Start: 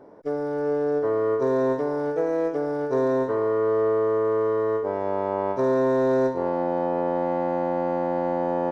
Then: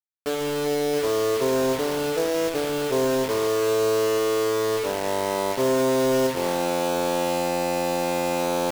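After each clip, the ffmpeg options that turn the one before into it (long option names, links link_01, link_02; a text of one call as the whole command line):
ffmpeg -i in.wav -af "acrusher=bits=4:mix=0:aa=0.000001" out.wav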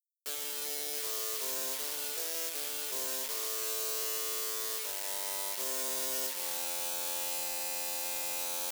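ffmpeg -i in.wav -af "aderivative" out.wav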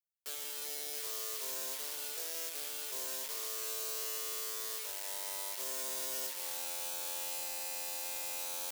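ffmpeg -i in.wav -af "highpass=frequency=300:poles=1,volume=-4dB" out.wav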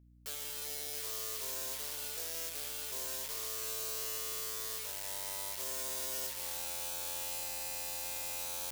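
ffmpeg -i in.wav -af "aeval=exprs='val(0)+0.001*(sin(2*PI*60*n/s)+sin(2*PI*2*60*n/s)/2+sin(2*PI*3*60*n/s)/3+sin(2*PI*4*60*n/s)/4+sin(2*PI*5*60*n/s)/5)':channel_layout=same" out.wav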